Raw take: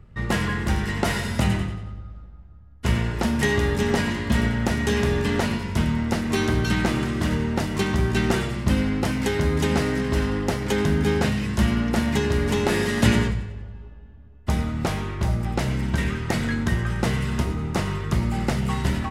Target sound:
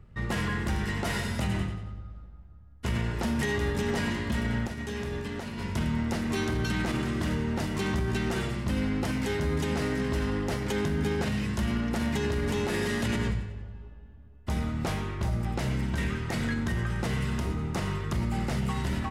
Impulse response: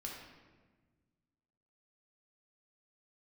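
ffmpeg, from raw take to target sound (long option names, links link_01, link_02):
-filter_complex "[0:a]alimiter=limit=-16dB:level=0:latency=1:release=38,asplit=3[link_01][link_02][link_03];[link_01]afade=type=out:start_time=4.66:duration=0.02[link_04];[link_02]agate=range=-33dB:threshold=-18dB:ratio=3:detection=peak,afade=type=in:start_time=4.66:duration=0.02,afade=type=out:start_time=5.57:duration=0.02[link_05];[link_03]afade=type=in:start_time=5.57:duration=0.02[link_06];[link_04][link_05][link_06]amix=inputs=3:normalize=0,volume=-4dB"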